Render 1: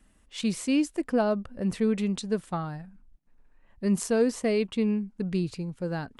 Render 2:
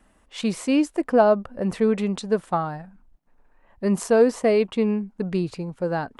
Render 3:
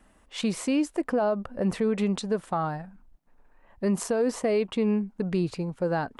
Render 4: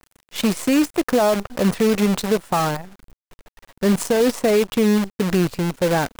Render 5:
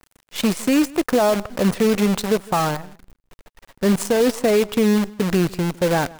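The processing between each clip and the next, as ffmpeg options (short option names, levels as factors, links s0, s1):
-af "equalizer=f=790:w=0.53:g=10.5"
-af "alimiter=limit=0.133:level=0:latency=1:release=101"
-af "acrusher=bits=6:dc=4:mix=0:aa=0.000001,volume=2.37"
-filter_complex "[0:a]asplit=2[s0][s1];[s1]adelay=157.4,volume=0.0794,highshelf=f=4000:g=-3.54[s2];[s0][s2]amix=inputs=2:normalize=0"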